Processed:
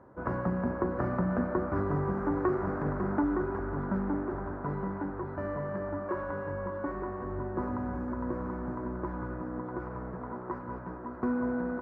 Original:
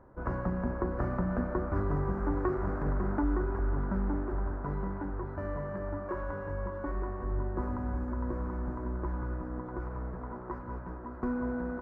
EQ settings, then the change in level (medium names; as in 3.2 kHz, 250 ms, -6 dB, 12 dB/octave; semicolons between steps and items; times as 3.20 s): high-pass 110 Hz 12 dB/octave; distance through air 56 m; +3.0 dB